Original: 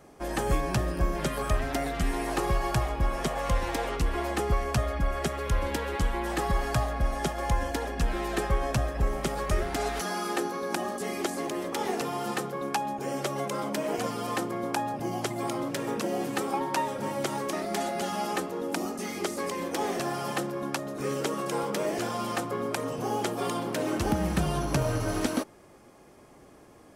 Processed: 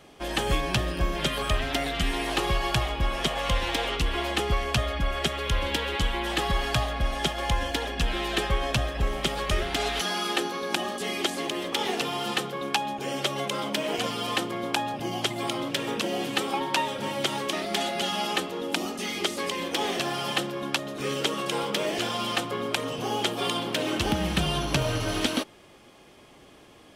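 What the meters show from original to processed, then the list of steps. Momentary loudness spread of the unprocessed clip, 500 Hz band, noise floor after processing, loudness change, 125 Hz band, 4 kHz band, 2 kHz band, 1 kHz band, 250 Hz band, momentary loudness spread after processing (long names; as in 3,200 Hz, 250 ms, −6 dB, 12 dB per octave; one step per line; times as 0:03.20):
4 LU, +0.5 dB, −52 dBFS, +2.5 dB, 0.0 dB, +11.5 dB, +5.5 dB, +1.0 dB, 0.0 dB, 3 LU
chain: parametric band 3,200 Hz +14 dB 1 octave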